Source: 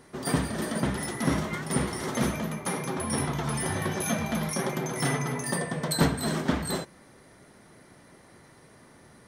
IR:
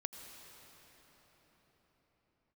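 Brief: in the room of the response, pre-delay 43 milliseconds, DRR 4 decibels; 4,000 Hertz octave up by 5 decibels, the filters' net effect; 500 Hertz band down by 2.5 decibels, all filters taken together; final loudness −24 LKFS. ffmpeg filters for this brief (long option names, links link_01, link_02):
-filter_complex "[0:a]equalizer=frequency=500:width_type=o:gain=-3.5,equalizer=frequency=4000:width_type=o:gain=6,asplit=2[link_01][link_02];[1:a]atrim=start_sample=2205,adelay=43[link_03];[link_02][link_03]afir=irnorm=-1:irlink=0,volume=-2.5dB[link_04];[link_01][link_04]amix=inputs=2:normalize=0,volume=3.5dB"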